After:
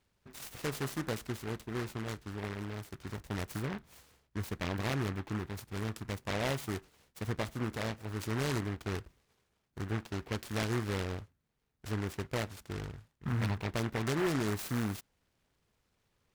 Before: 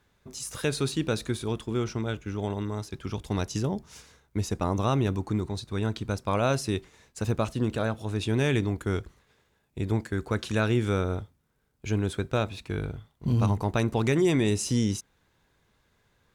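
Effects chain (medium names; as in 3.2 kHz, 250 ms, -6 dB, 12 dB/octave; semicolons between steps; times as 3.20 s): delay time shaken by noise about 1.2 kHz, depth 0.19 ms; trim -8.5 dB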